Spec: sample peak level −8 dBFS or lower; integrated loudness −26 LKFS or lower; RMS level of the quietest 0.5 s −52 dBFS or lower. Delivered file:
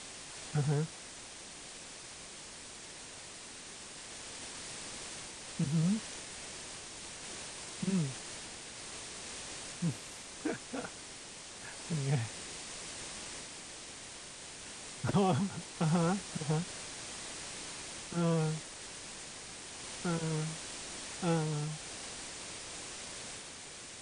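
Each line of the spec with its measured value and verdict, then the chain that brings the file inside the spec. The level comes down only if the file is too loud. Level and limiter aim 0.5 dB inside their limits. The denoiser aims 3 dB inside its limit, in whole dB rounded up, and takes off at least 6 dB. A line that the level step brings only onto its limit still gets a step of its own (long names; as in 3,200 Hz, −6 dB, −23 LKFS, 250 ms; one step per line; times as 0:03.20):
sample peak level −16.5 dBFS: in spec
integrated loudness −38.5 LKFS: in spec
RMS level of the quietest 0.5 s −49 dBFS: out of spec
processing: broadband denoise 6 dB, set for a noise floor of −49 dBFS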